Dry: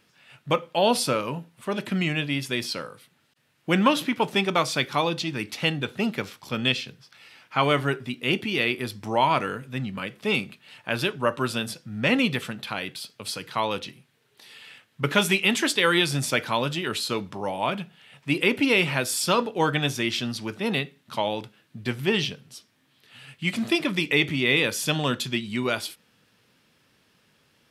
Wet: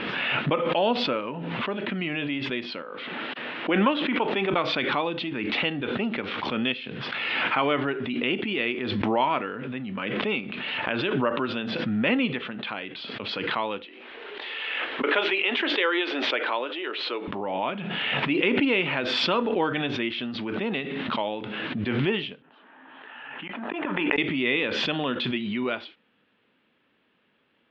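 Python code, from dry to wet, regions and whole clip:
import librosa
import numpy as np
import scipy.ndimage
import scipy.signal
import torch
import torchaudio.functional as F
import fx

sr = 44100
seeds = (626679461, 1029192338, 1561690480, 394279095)

y = fx.chain(x, sr, fx.highpass(hz=250.0, slope=12),
    fx.high_shelf(hz=7400.0, db=-10.0), at=(2.82, 4.53))
y = fx.chain(y, sr, fx.cheby2_highpass(hz=160.0, order=4, stop_db=40),
    fx.resample_linear(factor=3), at=(13.85, 17.28))
y = fx.chain(y, sr, fx.cabinet(low_hz=220.0, low_slope=24, high_hz=2500.0, hz=(220.0, 350.0, 490.0, 880.0, 1600.0, 2200.0), db=(-9, -6, -4, 9, 5, -9)),
    fx.gate_flip(shuts_db=-22.0, range_db=-35),
    fx.pre_swell(db_per_s=52.0), at=(22.42, 24.18))
y = scipy.signal.sosfilt(scipy.signal.butter(6, 3400.0, 'lowpass', fs=sr, output='sos'), y)
y = fx.low_shelf_res(y, sr, hz=180.0, db=-8.0, q=1.5)
y = fx.pre_swell(y, sr, db_per_s=21.0)
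y = y * 10.0 ** (-3.5 / 20.0)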